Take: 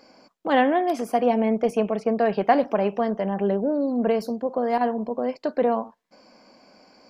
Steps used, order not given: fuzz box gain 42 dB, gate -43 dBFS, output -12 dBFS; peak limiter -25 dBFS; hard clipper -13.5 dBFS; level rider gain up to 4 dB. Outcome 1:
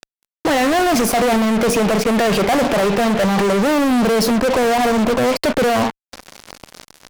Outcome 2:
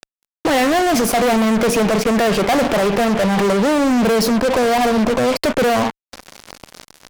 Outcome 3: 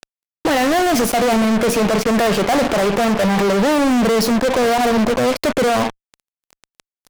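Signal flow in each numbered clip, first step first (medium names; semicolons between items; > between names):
peak limiter > level rider > fuzz box > hard clipper; level rider > hard clipper > peak limiter > fuzz box; peak limiter > fuzz box > level rider > hard clipper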